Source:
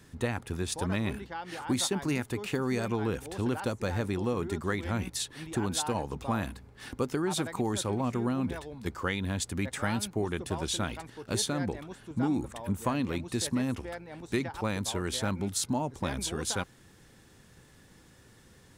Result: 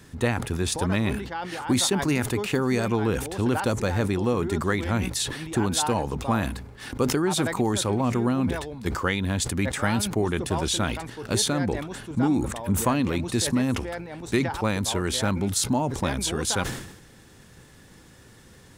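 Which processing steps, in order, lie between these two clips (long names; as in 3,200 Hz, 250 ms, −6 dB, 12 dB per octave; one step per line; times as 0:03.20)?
level that may fall only so fast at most 66 dB per second
level +6 dB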